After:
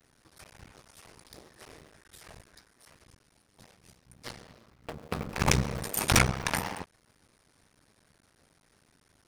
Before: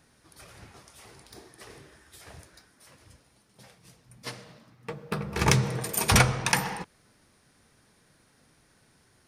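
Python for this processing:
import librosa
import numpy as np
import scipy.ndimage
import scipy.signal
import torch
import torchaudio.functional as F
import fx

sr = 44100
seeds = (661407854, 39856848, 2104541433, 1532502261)

y = fx.cycle_switch(x, sr, every=2, mode='muted')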